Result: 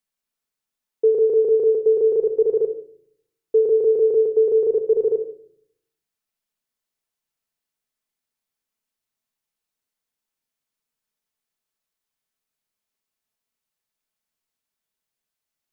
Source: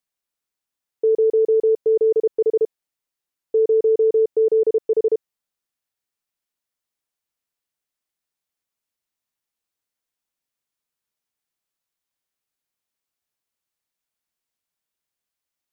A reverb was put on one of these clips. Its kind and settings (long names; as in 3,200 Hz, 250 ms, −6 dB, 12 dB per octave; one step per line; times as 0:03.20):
rectangular room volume 1,000 cubic metres, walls furnished, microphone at 1.5 metres
level −1 dB